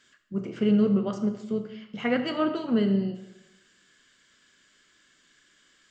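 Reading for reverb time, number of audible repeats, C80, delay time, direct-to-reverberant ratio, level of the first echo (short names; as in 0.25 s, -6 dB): 0.95 s, none, 11.5 dB, none, 7.5 dB, none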